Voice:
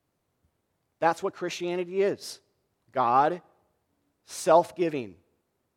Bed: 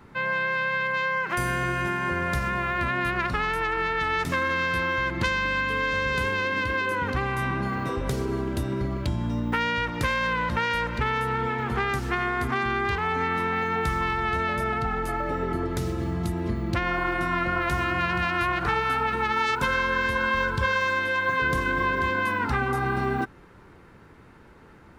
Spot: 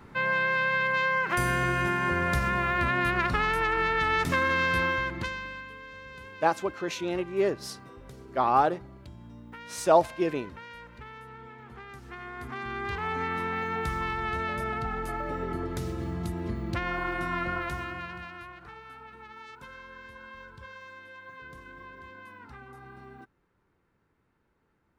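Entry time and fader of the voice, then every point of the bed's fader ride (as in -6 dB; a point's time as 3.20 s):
5.40 s, -0.5 dB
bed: 4.85 s 0 dB
5.80 s -19.5 dB
11.86 s -19.5 dB
13.07 s -5 dB
17.51 s -5 dB
18.63 s -22 dB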